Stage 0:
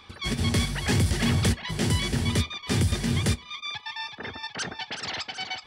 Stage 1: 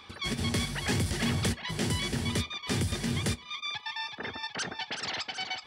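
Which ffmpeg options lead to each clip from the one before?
-filter_complex "[0:a]lowshelf=f=82:g=-9,asplit=2[s0][s1];[s1]acompressor=threshold=0.02:ratio=6,volume=1.06[s2];[s0][s2]amix=inputs=2:normalize=0,volume=0.501"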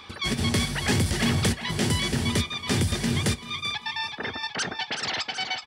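-af "aecho=1:1:388|776|1164:0.126|0.0403|0.0129,volume=1.88"

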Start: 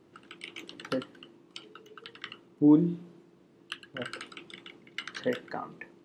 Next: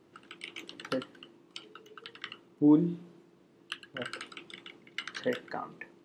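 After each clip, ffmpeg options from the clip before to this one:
-af "lowshelf=f=420:g=-3"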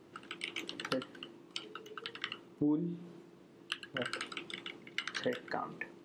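-af "acompressor=threshold=0.0141:ratio=3,volume=1.5"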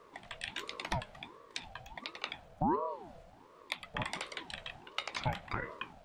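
-af "aeval=exprs='val(0)*sin(2*PI*560*n/s+560*0.45/1.4*sin(2*PI*1.4*n/s))':c=same,volume=1.41"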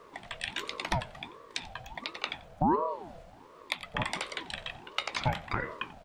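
-af "aecho=1:1:89:0.0944,volume=1.78"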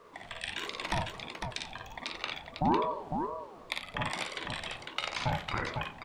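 -af "aecho=1:1:43|55|89|221|503|528:0.355|0.631|0.106|0.1|0.562|0.106,volume=0.708"

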